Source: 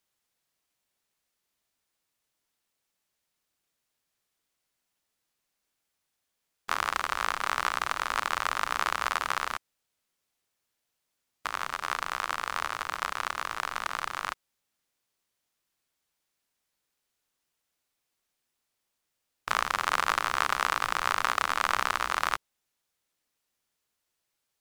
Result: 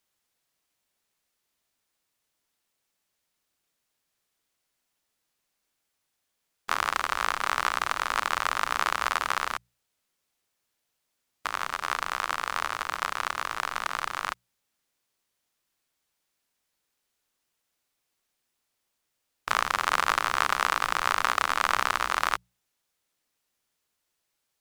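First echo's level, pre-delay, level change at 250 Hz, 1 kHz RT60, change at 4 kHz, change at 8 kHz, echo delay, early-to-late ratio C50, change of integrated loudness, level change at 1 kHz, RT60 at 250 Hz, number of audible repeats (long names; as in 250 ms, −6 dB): no echo audible, no reverb audible, +2.0 dB, no reverb audible, +2.0 dB, +2.0 dB, no echo audible, no reverb audible, +2.0 dB, +2.0 dB, no reverb audible, no echo audible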